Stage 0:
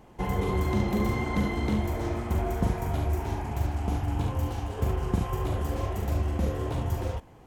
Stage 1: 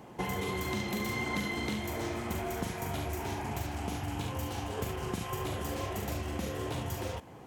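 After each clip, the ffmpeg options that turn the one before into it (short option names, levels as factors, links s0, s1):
-filter_complex "[0:a]highpass=110,acrossover=split=1800[s0][s1];[s0]acompressor=threshold=0.0141:ratio=6[s2];[s2][s1]amix=inputs=2:normalize=0,volume=1.58"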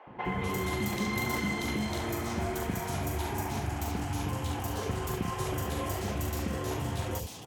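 -filter_complex "[0:a]acrossover=split=500|2900[s0][s1][s2];[s0]adelay=70[s3];[s2]adelay=250[s4];[s3][s1][s4]amix=inputs=3:normalize=0,volume=1.5"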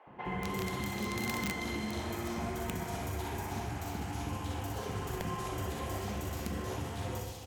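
-af "highshelf=f=10000:g=-4.5,aecho=1:1:60|126|198.6|278.5|366.3:0.631|0.398|0.251|0.158|0.1,aeval=exprs='(mod(9.44*val(0)+1,2)-1)/9.44':c=same,volume=0.501"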